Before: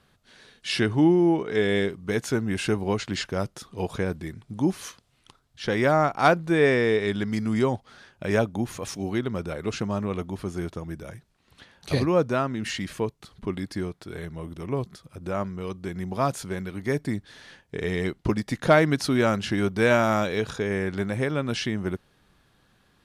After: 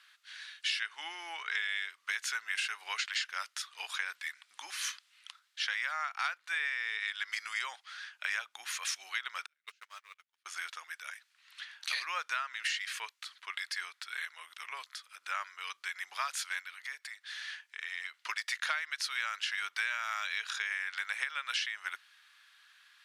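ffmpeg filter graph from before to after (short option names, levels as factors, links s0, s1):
-filter_complex "[0:a]asettb=1/sr,asplit=3[s0][s1][s2];[s0]atrim=end=9.464[s3];[s1]atrim=start=9.46:end=10.46,asetpts=PTS-STARTPTS,afade=t=in:d=0.004:c=qsin,afade=t=out:st=0.996:d=0.004:c=qsin,aeval=exprs='val(0)+0.5*0.00794*sgn(val(0))':c=same,agate=range=0.00631:threshold=0.0562:ratio=16:release=100:detection=peak,equalizer=f=800:w=0.68:g=-7[s4];[s2]atrim=start=10.456[s5];[s3][s4]acrossfade=d=0.004:c1=hsin:c2=qsin[s6];[s6][s5]acrossfade=d=0.004:c1=qsin:c2=hsin,asettb=1/sr,asplit=3[s7][s8][s9];[s7]atrim=end=16.594[s10];[s8]atrim=start=16.59:end=18.14,asetpts=PTS-STARTPTS,afade=t=in:d=0.004:c=qsin,afade=t=out:st=1.546:d=0.004:c=qsin,highpass=150,acompressor=threshold=0.0112:ratio=3:attack=3.2:release=140:knee=1:detection=peak[s11];[s9]atrim=start=18.136[s12];[s10][s11]acrossfade=d=0.004:c1=hsin:c2=qsin[s13];[s13][s12]acrossfade=d=0.004:c1=qsin:c2=hsin,highpass=f=1500:w=0.5412,highpass=f=1500:w=1.3066,highshelf=f=6500:g=-10,acompressor=threshold=0.0112:ratio=12,volume=2.66"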